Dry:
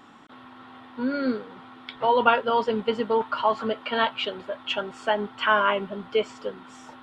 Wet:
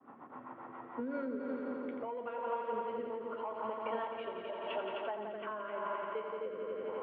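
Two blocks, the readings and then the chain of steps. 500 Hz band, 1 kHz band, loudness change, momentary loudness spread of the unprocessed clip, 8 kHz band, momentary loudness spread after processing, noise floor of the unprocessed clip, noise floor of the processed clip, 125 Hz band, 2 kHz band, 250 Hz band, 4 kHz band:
−11.5 dB, −14.5 dB, −14.5 dB, 16 LU, can't be measured, 6 LU, −48 dBFS, −52 dBFS, below −15 dB, −19.0 dB, −12.0 dB, −22.5 dB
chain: parametric band 1,600 Hz −7 dB 0.8 octaves
low-pass that shuts in the quiet parts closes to 1,400 Hz, open at −21.5 dBFS
mains-hum notches 50/100/150/200/250 Hz
soft clipping −14 dBFS, distortion −18 dB
loudspeaker in its box 180–2,200 Hz, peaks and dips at 200 Hz −6 dB, 320 Hz −5 dB, 1,000 Hz +4 dB
echo machine with several playback heads 86 ms, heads all three, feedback 68%, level −9 dB
downward compressor 5 to 1, threshold −38 dBFS, peak gain reduction 20 dB
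rotating-speaker cabinet horn 7.5 Hz, later 0.9 Hz, at 0:00.61
downward expander −55 dBFS
level +3 dB

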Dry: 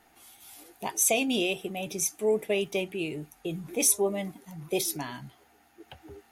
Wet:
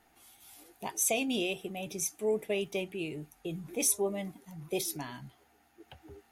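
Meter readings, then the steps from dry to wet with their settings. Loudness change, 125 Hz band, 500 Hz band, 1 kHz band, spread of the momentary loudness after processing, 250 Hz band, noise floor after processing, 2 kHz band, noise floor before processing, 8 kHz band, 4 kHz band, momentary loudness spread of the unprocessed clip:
−5.0 dB, −3.5 dB, −4.5 dB, −5.0 dB, 15 LU, −4.0 dB, −67 dBFS, −5.0 dB, −62 dBFS, −5.0 dB, −5.0 dB, 16 LU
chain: low-shelf EQ 140 Hz +4 dB
level −5 dB

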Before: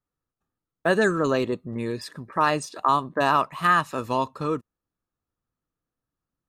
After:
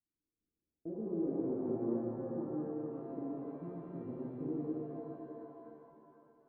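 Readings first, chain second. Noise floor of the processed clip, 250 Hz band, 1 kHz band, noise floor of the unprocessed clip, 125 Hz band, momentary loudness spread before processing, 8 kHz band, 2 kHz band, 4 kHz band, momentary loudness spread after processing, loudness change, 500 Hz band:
below −85 dBFS, −7.5 dB, −29.5 dB, below −85 dBFS, −12.5 dB, 10 LU, below −35 dB, below −40 dB, below −40 dB, 14 LU, −15.5 dB, −13.5 dB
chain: downward compressor 3 to 1, threshold −28 dBFS, peak gain reduction 10 dB
transistor ladder low-pass 370 Hz, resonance 55%
reverb with rising layers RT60 3.3 s, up +7 semitones, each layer −8 dB, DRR −6.5 dB
level −6.5 dB

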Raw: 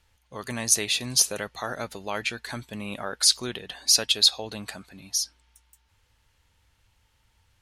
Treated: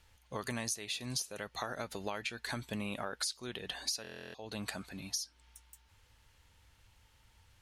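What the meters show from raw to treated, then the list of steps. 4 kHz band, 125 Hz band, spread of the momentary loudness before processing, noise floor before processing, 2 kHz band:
−16.5 dB, −5.5 dB, 17 LU, −68 dBFS, −8.5 dB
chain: downward compressor 20 to 1, threshold −35 dBFS, peak gain reduction 22.5 dB
buffer that repeats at 0:04.02, samples 1,024, times 13
level +1 dB

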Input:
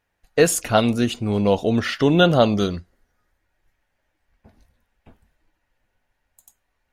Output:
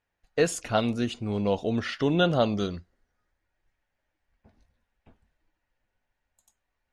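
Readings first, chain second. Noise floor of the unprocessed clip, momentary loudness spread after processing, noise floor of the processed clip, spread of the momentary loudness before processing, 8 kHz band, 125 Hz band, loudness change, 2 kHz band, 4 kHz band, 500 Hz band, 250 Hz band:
−75 dBFS, 9 LU, −82 dBFS, 9 LU, −11.0 dB, −7.5 dB, −7.5 dB, −7.5 dB, −7.5 dB, −7.5 dB, −7.5 dB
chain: low-pass filter 7,500 Hz 12 dB per octave
level −7.5 dB

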